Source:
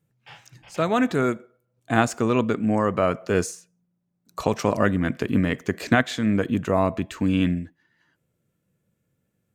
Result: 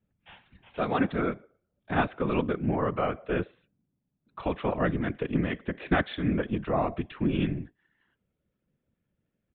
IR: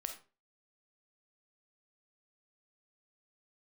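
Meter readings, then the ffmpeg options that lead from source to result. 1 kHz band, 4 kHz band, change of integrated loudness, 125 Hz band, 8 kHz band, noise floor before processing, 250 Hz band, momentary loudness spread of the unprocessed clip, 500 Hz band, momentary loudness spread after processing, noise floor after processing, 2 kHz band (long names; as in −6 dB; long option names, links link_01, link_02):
−5.0 dB, −7.5 dB, −6.0 dB, −5.0 dB, below −40 dB, −75 dBFS, −6.5 dB, 8 LU, −6.0 dB, 7 LU, −82 dBFS, −6.5 dB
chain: -af "aresample=8000,aresample=44100,afftfilt=real='hypot(re,im)*cos(2*PI*random(0))':imag='hypot(re,im)*sin(2*PI*random(1))':win_size=512:overlap=0.75"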